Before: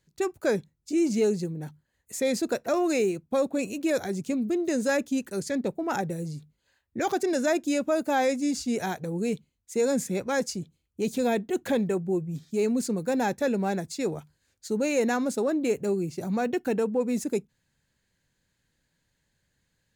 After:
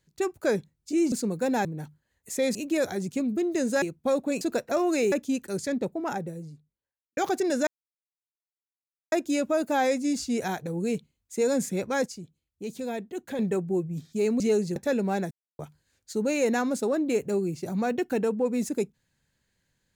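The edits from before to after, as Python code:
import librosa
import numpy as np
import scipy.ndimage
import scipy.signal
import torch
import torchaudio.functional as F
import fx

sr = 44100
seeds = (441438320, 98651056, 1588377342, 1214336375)

y = fx.studio_fade_out(x, sr, start_s=5.5, length_s=1.5)
y = fx.edit(y, sr, fx.swap(start_s=1.12, length_s=0.36, other_s=12.78, other_length_s=0.53),
    fx.swap(start_s=2.38, length_s=0.71, other_s=3.68, other_length_s=1.27),
    fx.insert_silence(at_s=7.5, length_s=1.45),
    fx.clip_gain(start_s=10.44, length_s=1.33, db=-7.5),
    fx.silence(start_s=13.86, length_s=0.28), tone=tone)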